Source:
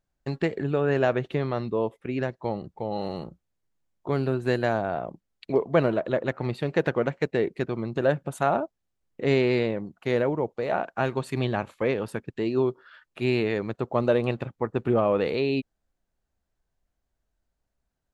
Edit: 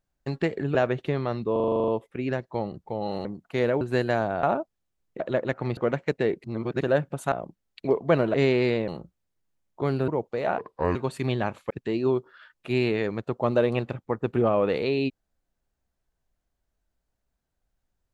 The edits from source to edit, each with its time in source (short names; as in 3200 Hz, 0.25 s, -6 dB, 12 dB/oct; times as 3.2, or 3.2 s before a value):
0.75–1.01 cut
1.78 stutter 0.04 s, 10 plays
3.15–4.35 swap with 9.77–10.33
4.97–5.99 swap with 8.46–9.23
6.56–6.91 cut
7.58–7.96 reverse
10.83–11.08 speed 67%
11.83–12.22 cut